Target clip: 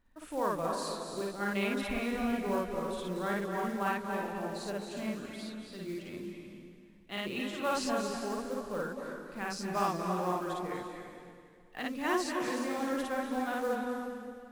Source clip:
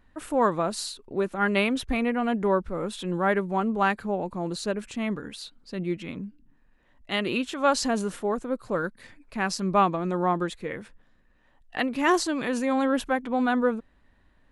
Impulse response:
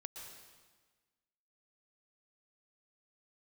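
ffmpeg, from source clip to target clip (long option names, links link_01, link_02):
-filter_complex "[0:a]flanger=delay=3.1:depth=6.6:regen=-73:speed=0.58:shape=triangular,acrusher=bits=5:mode=log:mix=0:aa=0.000001,asplit=2[link_01][link_02];[1:a]atrim=start_sample=2205,asetrate=28224,aresample=44100,adelay=55[link_03];[link_02][link_03]afir=irnorm=-1:irlink=0,volume=3.5dB[link_04];[link_01][link_04]amix=inputs=2:normalize=0,volume=-8dB"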